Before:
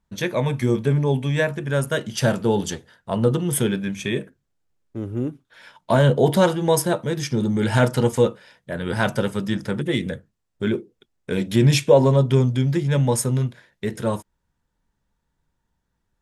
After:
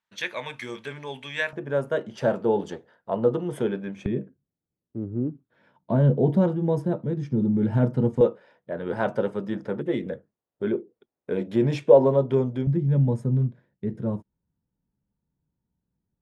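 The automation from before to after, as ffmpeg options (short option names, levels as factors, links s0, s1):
-af "asetnsamples=n=441:p=0,asendcmd='1.53 bandpass f 560;4.06 bandpass f 200;8.21 bandpass f 510;12.67 bandpass f 170',bandpass=f=2400:t=q:w=0.88:csg=0"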